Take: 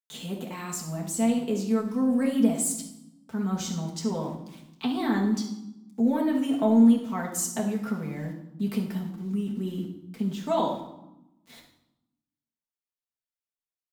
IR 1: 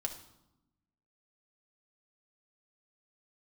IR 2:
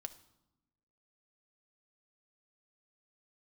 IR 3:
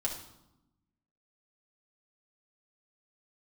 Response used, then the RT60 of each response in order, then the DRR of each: 3; 0.90 s, no single decay rate, 0.90 s; 3.0 dB, 9.0 dB, -2.5 dB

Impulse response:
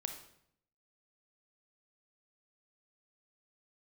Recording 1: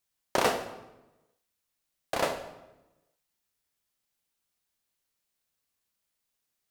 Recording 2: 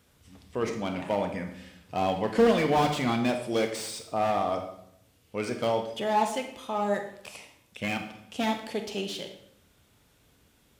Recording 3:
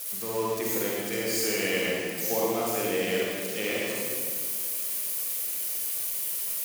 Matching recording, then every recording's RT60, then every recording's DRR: 2; 1.0 s, 0.70 s, 2.0 s; 6.0 dB, 5.0 dB, -5.0 dB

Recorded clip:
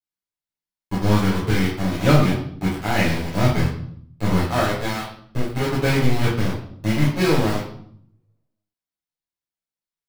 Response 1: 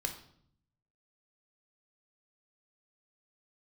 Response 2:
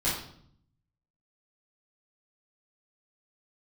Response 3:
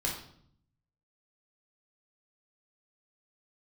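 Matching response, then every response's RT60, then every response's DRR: 2; 0.65 s, 0.65 s, 0.65 s; 4.0 dB, -11.5 dB, -3.5 dB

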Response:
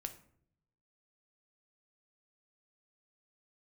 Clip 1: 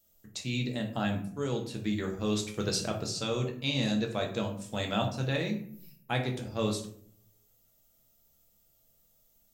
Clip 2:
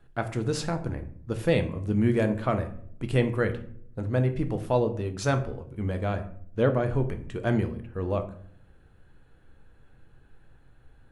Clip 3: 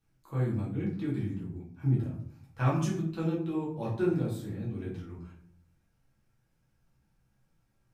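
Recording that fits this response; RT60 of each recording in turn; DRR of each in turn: 2; 0.65 s, 0.65 s, 0.65 s; 1.5 dB, 7.0 dB, -7.0 dB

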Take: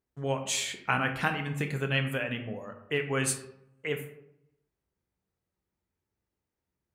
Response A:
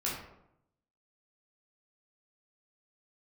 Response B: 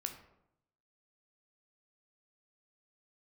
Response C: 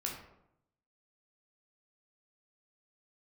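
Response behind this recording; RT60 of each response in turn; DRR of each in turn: B; 0.80 s, 0.80 s, 0.80 s; -6.5 dB, 5.0 dB, -1.5 dB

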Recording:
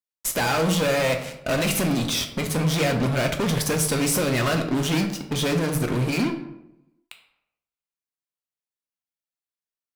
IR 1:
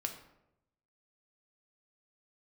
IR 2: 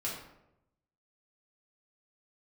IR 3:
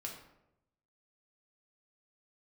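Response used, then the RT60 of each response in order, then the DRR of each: 1; 0.85 s, 0.85 s, 0.85 s; 3.5 dB, -6.5 dB, -1.0 dB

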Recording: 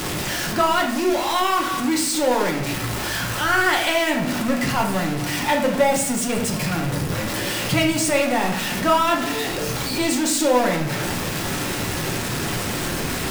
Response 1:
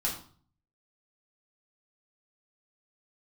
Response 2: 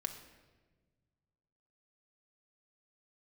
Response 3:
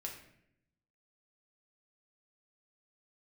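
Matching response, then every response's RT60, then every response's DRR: 3; 0.45 s, 1.4 s, 0.75 s; -4.5 dB, 5.0 dB, -0.5 dB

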